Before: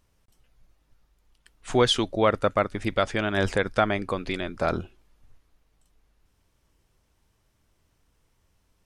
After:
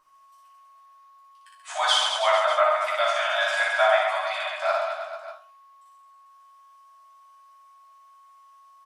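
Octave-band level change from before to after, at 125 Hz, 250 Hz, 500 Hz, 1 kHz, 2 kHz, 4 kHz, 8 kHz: below −40 dB, below −40 dB, +1.0 dB, +5.5 dB, +6.0 dB, +4.5 dB, +4.0 dB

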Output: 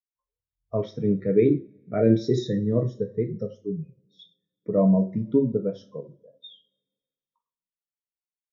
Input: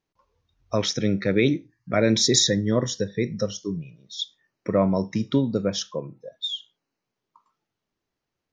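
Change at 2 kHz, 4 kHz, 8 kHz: below −10 dB, −20.0 dB, below −25 dB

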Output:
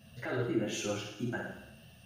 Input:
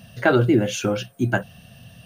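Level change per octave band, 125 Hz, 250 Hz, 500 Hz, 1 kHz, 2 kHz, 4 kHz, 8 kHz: −16.0, −14.0, −14.5, −17.0, −14.5, −9.5, −8.5 decibels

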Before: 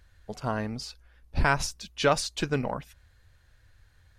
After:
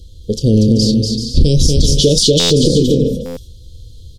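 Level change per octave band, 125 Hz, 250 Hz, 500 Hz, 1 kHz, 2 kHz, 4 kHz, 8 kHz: +21.0, +21.5, +16.5, −8.5, −5.5, +20.5, +18.5 decibels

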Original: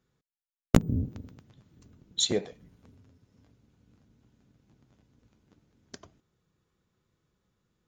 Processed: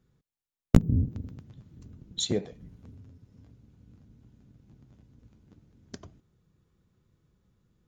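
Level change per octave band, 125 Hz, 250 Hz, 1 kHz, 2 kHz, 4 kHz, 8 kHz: +4.0, +1.5, −4.5, −5.0, −4.0, −4.0 decibels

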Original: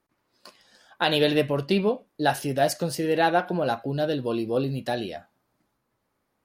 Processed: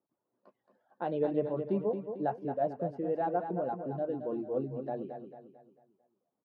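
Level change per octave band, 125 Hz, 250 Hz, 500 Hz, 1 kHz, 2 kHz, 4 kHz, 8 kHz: −11.0 dB, −8.5 dB, −7.5 dB, −9.0 dB, −22.0 dB, below −30 dB, below −40 dB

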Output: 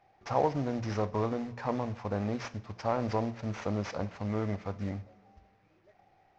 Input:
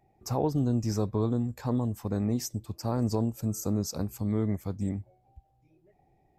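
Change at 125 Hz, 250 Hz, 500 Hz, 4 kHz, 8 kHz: −6.0, −5.5, +0.5, −4.0, −14.0 decibels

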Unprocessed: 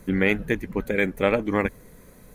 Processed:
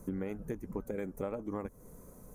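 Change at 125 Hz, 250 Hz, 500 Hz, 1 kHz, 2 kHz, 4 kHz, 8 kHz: −12.5 dB, −13.5 dB, −14.5 dB, −16.0 dB, −27.5 dB, below −25 dB, can't be measured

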